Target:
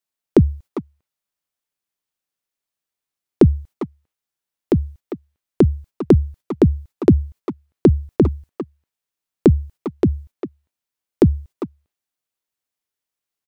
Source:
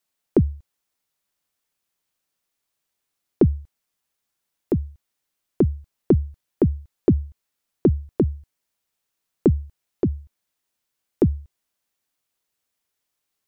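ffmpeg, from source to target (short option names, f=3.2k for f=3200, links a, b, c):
-filter_complex "[0:a]agate=range=-12dB:threshold=-43dB:ratio=16:detection=peak,asplit=2[a][b];[b]adelay=400,highpass=300,lowpass=3.4k,asoftclip=type=hard:threshold=-15dB,volume=-8dB[c];[a][c]amix=inputs=2:normalize=0,volume=5dB"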